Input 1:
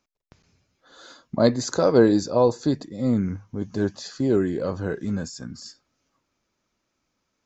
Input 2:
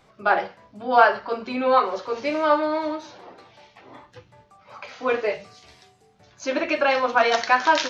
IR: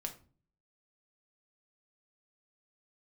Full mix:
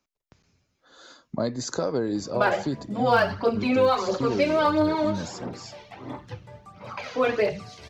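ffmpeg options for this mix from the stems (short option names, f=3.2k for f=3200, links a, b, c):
-filter_complex "[0:a]acompressor=threshold=-19dB:ratio=6,volume=-2.5dB[a];[1:a]equalizer=f=160:w=0.39:g=8.5,aphaser=in_gain=1:out_gain=1:delay=2.1:decay=0.5:speed=1.5:type=triangular,adelay=2150,volume=2dB[b];[a][b]amix=inputs=2:normalize=0,acrossover=split=140|3000[c][d][e];[d]acompressor=threshold=-21dB:ratio=3[f];[c][f][e]amix=inputs=3:normalize=0"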